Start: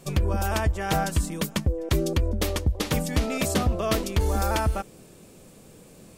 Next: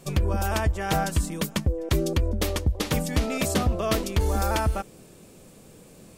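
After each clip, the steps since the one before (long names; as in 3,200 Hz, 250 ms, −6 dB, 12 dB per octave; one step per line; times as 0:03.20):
no processing that can be heard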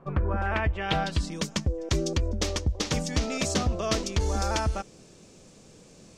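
low-pass filter sweep 1,200 Hz → 6,100 Hz, 0:00.07–0:01.44
level −3 dB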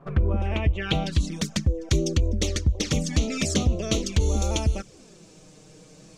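flanger swept by the level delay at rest 7.7 ms, full sweep at −23 dBFS
dynamic equaliser 890 Hz, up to −7 dB, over −48 dBFS, Q 1.2
level +5 dB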